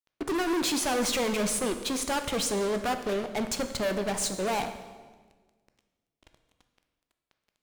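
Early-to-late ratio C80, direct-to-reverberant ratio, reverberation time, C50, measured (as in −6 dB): 11.0 dB, 7.5 dB, 1.4 s, 9.5 dB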